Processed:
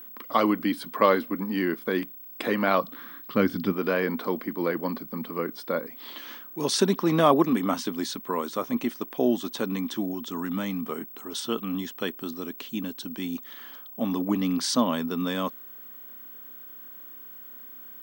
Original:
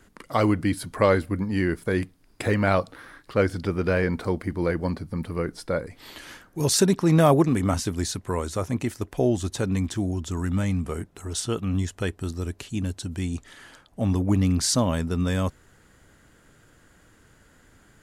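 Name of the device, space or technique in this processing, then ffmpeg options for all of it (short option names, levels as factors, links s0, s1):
old television with a line whistle: -filter_complex "[0:a]asplit=3[s0][s1][s2];[s0]afade=t=out:st=2.8:d=0.02[s3];[s1]asubboost=boost=6:cutoff=220,afade=t=in:st=2.8:d=0.02,afade=t=out:st=3.71:d=0.02[s4];[s2]afade=t=in:st=3.71:d=0.02[s5];[s3][s4][s5]amix=inputs=3:normalize=0,highpass=f=200:w=0.5412,highpass=f=200:w=1.3066,equalizer=f=240:t=q:w=4:g=5,equalizer=f=1100:t=q:w=4:g=7,equalizer=f=3300:t=q:w=4:g=7,equalizer=f=7300:t=q:w=4:g=-9,lowpass=f=8600:w=0.5412,lowpass=f=8600:w=1.3066,aeval=exprs='val(0)+0.0112*sin(2*PI*15734*n/s)':c=same,volume=0.794"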